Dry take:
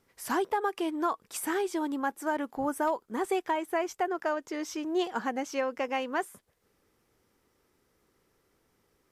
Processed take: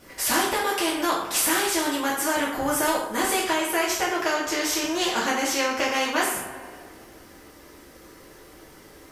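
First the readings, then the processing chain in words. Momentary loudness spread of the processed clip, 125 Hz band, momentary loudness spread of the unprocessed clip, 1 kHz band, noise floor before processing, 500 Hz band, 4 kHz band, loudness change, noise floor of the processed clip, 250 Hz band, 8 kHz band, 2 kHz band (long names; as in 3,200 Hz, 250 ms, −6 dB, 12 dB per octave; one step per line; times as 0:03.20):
3 LU, can't be measured, 4 LU, +5.5 dB, −73 dBFS, +4.5 dB, +17.0 dB, +8.0 dB, −49 dBFS, +5.0 dB, +17.0 dB, +11.5 dB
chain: coupled-rooms reverb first 0.43 s, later 1.8 s, from −25 dB, DRR −7.5 dB
every bin compressed towards the loudest bin 2 to 1
level −3 dB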